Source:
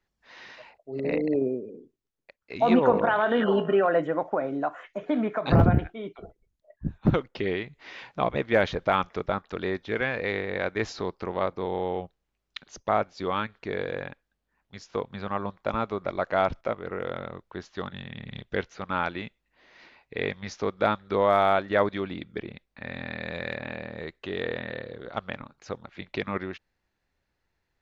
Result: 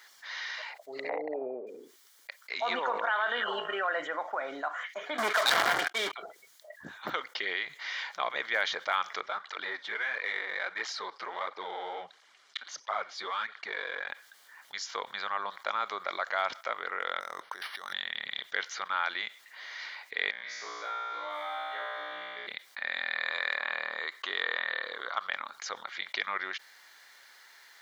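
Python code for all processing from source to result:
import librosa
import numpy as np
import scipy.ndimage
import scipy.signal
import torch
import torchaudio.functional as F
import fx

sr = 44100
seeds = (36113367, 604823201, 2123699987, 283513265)

y = fx.chain(x, sr, fx.lowpass(hz=1100.0, slope=12),
    fx.peak_eq(hz=790.0, db=15.0, octaves=0.84), at=(1.09, 1.67))
y = fx.chain(y, sr, fx.leveller(passes=5),
    fx.band_widen(depth_pct=40), at=(5.18, 6.13))
y = fx.chain(y, sr, fx.halfwave_gain(db=-3.0),
    fx.air_absorb(metres=93.0),
    fx.flanger_cancel(hz=1.5, depth_ms=7.5), at=(9.21, 14.09))
y = fx.chain(y, sr, fx.highpass(hz=42.0, slope=12),
    fx.over_compress(threshold_db=-46.0, ratio=-1.0),
    fx.resample_linear(factor=6), at=(17.2, 17.93))
y = fx.chain(y, sr, fx.comb_fb(f0_hz=60.0, decay_s=1.7, harmonics='all', damping=0.0, mix_pct=100),
    fx.band_squash(depth_pct=40), at=(20.31, 22.47))
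y = fx.chain(y, sr, fx.brickwall_highpass(low_hz=170.0),
    fx.peak_eq(hz=1100.0, db=8.5, octaves=0.5), at=(23.15, 25.27))
y = scipy.signal.sosfilt(scipy.signal.butter(2, 1400.0, 'highpass', fs=sr, output='sos'), y)
y = fx.notch(y, sr, hz=2600.0, q=5.1)
y = fx.env_flatten(y, sr, amount_pct=50)
y = y * 10.0 ** (-3.5 / 20.0)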